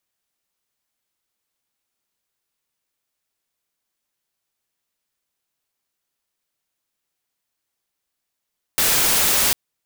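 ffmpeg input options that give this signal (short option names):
-f lavfi -i "anoisesrc=c=white:a=0.231:d=0.75:r=44100:seed=1"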